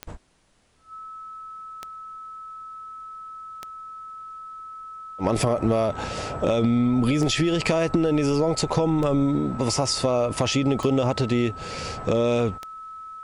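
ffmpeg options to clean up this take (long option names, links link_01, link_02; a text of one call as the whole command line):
ffmpeg -i in.wav -af "adeclick=threshold=4,bandreject=frequency=1300:width=30,agate=range=-21dB:threshold=-31dB" out.wav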